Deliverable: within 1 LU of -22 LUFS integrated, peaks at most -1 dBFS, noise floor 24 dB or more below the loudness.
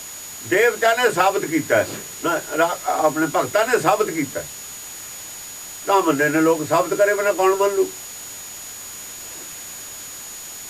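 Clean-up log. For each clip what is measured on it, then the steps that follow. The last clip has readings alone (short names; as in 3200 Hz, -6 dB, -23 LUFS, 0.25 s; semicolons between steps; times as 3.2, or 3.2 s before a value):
steady tone 6800 Hz; tone level -35 dBFS; noise floor -35 dBFS; noise floor target -43 dBFS; loudness -19.0 LUFS; peak -4.0 dBFS; loudness target -22.0 LUFS
-> notch 6800 Hz, Q 30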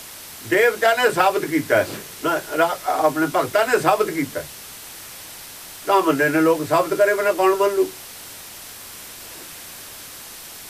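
steady tone none; noise floor -38 dBFS; noise floor target -44 dBFS
-> noise print and reduce 6 dB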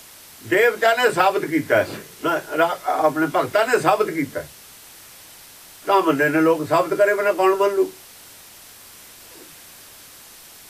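noise floor -44 dBFS; loudness -19.5 LUFS; peak -4.0 dBFS; loudness target -22.0 LUFS
-> gain -2.5 dB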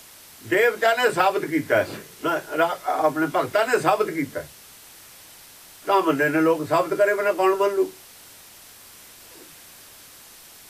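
loudness -22.0 LUFS; peak -6.5 dBFS; noise floor -47 dBFS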